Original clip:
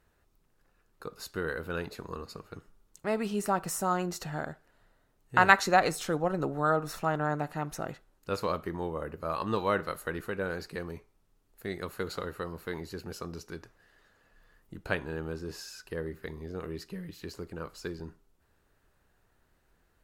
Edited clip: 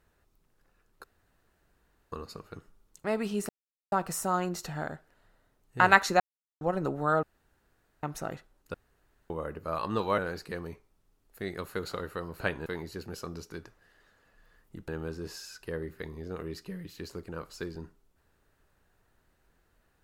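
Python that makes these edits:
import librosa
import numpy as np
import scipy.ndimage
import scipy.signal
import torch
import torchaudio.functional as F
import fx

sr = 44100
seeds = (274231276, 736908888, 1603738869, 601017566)

y = fx.edit(x, sr, fx.room_tone_fill(start_s=1.04, length_s=1.08),
    fx.insert_silence(at_s=3.49, length_s=0.43),
    fx.silence(start_s=5.77, length_s=0.41),
    fx.room_tone_fill(start_s=6.8, length_s=0.8),
    fx.room_tone_fill(start_s=8.31, length_s=0.56),
    fx.cut(start_s=9.75, length_s=0.67),
    fx.move(start_s=14.86, length_s=0.26, to_s=12.64), tone=tone)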